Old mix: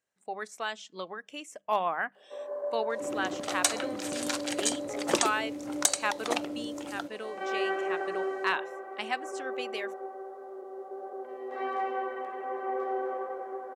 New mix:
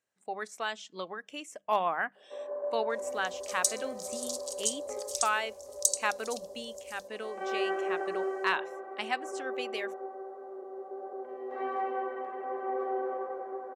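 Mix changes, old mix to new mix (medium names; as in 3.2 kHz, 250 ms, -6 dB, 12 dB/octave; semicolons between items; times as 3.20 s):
first sound: add treble shelf 2.5 kHz -11.5 dB; second sound: add inverse Chebyshev band-stop 260–1400 Hz, stop band 70 dB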